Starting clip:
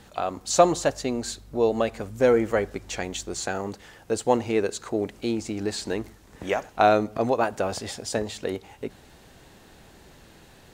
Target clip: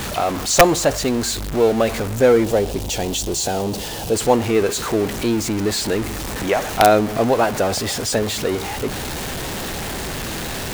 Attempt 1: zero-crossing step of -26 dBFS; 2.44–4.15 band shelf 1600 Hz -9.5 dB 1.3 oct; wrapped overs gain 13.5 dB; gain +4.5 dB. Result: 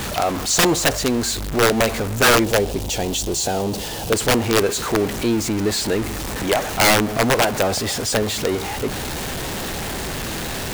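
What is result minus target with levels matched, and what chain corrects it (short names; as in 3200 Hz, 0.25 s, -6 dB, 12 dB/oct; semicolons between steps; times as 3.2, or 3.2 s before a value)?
wrapped overs: distortion +14 dB
zero-crossing step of -26 dBFS; 2.44–4.15 band shelf 1600 Hz -9.5 dB 1.3 oct; wrapped overs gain 5.5 dB; gain +4.5 dB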